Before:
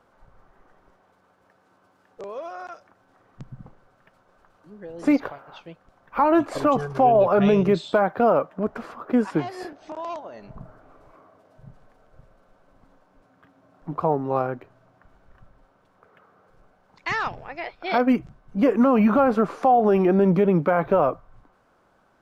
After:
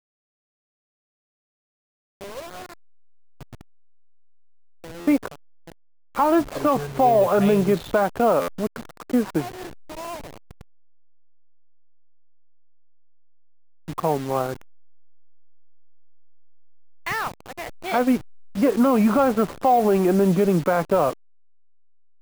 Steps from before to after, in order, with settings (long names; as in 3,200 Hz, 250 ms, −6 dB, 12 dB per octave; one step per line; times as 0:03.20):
hold until the input has moved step −31 dBFS
buffer that repeats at 0:05.00/0:08.41, samples 512, times 5